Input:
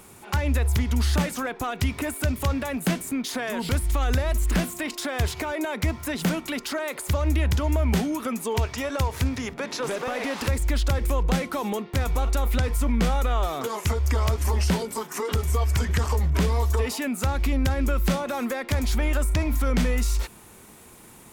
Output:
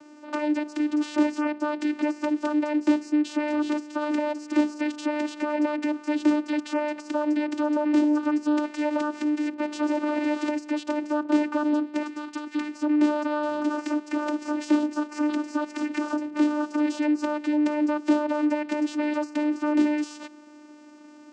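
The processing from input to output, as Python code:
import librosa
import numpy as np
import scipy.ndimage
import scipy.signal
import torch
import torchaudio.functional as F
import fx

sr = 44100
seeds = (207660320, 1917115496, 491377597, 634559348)

y = fx.band_shelf(x, sr, hz=590.0, db=-15.5, octaves=1.7, at=(12.02, 12.75))
y = fx.vocoder(y, sr, bands=8, carrier='saw', carrier_hz=299.0)
y = y * 10.0 ** (4.0 / 20.0)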